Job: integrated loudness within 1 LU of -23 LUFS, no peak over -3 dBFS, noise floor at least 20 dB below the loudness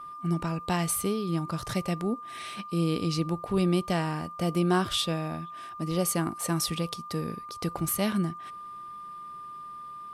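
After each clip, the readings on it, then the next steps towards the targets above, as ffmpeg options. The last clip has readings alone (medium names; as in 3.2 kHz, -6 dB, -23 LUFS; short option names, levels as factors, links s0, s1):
steady tone 1.2 kHz; tone level -39 dBFS; loudness -29.5 LUFS; peak level -12.5 dBFS; loudness target -23.0 LUFS
-> -af "bandreject=f=1200:w=30"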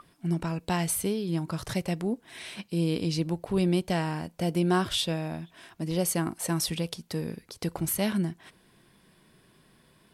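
steady tone not found; loudness -29.5 LUFS; peak level -12.5 dBFS; loudness target -23.0 LUFS
-> -af "volume=2.11"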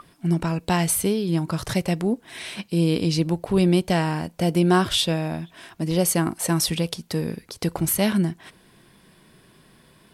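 loudness -23.0 LUFS; peak level -6.0 dBFS; noise floor -56 dBFS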